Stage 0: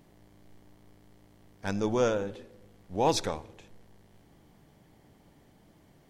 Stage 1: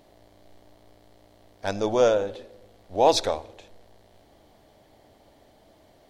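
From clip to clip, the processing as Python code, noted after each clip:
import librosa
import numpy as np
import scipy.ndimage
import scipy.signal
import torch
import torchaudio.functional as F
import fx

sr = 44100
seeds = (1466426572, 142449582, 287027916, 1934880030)

y = fx.graphic_eq_15(x, sr, hz=(160, 630, 4000), db=(-11, 10, 7))
y = y * librosa.db_to_amplitude(2.0)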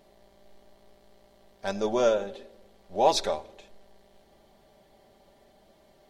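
y = x + 0.61 * np.pad(x, (int(5.1 * sr / 1000.0), 0))[:len(x)]
y = y * librosa.db_to_amplitude(-4.0)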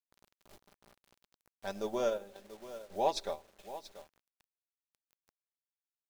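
y = x + 10.0 ** (-14.5 / 20.0) * np.pad(x, (int(685 * sr / 1000.0), 0))[:len(x)]
y = fx.quant_dither(y, sr, seeds[0], bits=8, dither='none')
y = fx.transient(y, sr, attack_db=1, sustain_db=-7)
y = y * librosa.db_to_amplitude(-9.0)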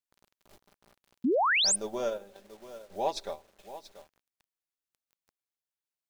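y = fx.spec_paint(x, sr, seeds[1], shape='rise', start_s=1.24, length_s=0.52, low_hz=220.0, high_hz=10000.0, level_db=-25.0)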